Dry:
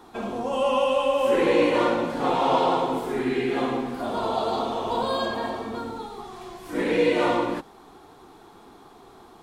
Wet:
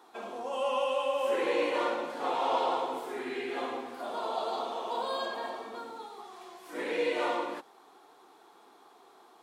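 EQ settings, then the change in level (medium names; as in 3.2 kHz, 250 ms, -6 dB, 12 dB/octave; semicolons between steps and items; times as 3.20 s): high-pass 430 Hz 12 dB/octave; -6.5 dB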